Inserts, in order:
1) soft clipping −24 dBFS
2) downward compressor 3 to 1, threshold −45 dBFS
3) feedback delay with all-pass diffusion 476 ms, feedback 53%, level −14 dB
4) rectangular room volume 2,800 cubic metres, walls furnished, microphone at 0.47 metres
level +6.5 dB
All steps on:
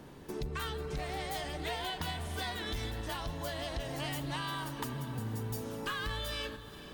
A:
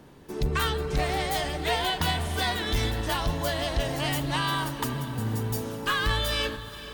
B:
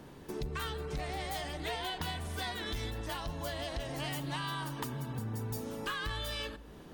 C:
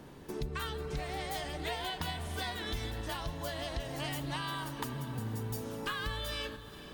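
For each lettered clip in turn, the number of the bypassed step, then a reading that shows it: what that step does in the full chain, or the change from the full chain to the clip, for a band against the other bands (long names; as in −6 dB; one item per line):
2, average gain reduction 8.5 dB
3, echo-to-direct ratio −10.5 dB to −15.5 dB
1, distortion level −17 dB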